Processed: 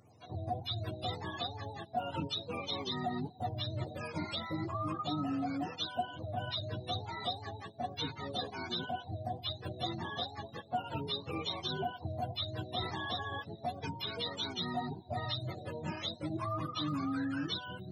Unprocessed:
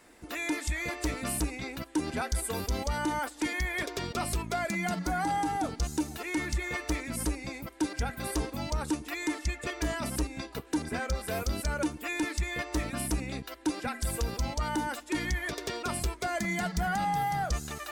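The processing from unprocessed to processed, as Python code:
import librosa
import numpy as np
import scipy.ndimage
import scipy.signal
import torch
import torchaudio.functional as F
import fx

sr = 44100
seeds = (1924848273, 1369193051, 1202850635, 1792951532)

y = fx.octave_mirror(x, sr, pivot_hz=470.0)
y = fx.low_shelf(y, sr, hz=360.0, db=-7.5)
y = fx.band_squash(y, sr, depth_pct=70, at=(12.82, 14.07))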